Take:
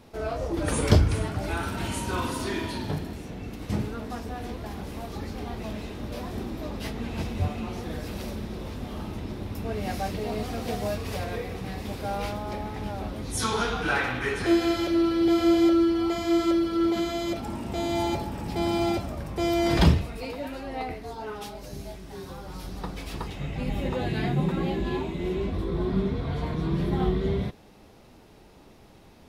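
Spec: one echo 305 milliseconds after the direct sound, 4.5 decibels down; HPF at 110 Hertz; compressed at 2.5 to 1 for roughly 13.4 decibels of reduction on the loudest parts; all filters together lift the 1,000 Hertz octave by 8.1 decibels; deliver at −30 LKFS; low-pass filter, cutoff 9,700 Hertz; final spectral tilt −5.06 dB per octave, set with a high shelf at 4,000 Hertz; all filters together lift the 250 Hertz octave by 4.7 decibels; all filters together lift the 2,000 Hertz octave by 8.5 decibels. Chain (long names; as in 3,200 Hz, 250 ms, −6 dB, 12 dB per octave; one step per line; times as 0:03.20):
high-pass filter 110 Hz
low-pass filter 9,700 Hz
parametric band 250 Hz +6.5 dB
parametric band 1,000 Hz +8.5 dB
parametric band 2,000 Hz +6 dB
high-shelf EQ 4,000 Hz +8 dB
downward compressor 2.5 to 1, threshold −32 dBFS
single-tap delay 305 ms −4.5 dB
level +0.5 dB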